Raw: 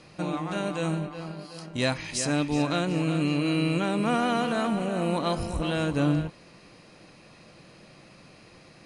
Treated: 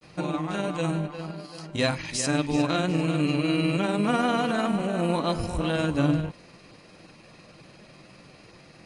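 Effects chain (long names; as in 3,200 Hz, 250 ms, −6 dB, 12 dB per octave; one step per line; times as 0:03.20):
granular cloud 100 ms, grains 20 per second, spray 16 ms, pitch spread up and down by 0 semitones
level +2.5 dB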